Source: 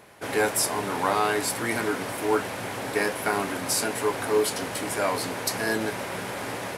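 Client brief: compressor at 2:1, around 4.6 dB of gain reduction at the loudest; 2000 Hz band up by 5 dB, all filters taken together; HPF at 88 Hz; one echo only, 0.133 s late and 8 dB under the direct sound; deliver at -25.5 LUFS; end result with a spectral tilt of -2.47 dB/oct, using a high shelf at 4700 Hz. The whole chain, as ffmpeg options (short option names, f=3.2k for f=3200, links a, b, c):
-af "highpass=88,equalizer=f=2k:t=o:g=5,highshelf=f=4.7k:g=8.5,acompressor=threshold=-24dB:ratio=2,aecho=1:1:133:0.398,volume=-0.5dB"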